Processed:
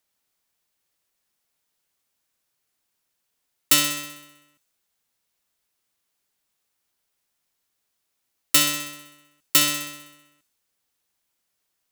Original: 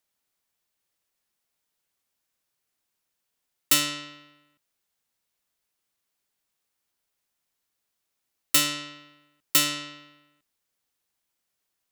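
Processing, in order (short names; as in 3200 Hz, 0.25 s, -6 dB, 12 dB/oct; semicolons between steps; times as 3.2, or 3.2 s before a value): thin delay 64 ms, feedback 62%, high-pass 4000 Hz, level -9 dB; gain +3 dB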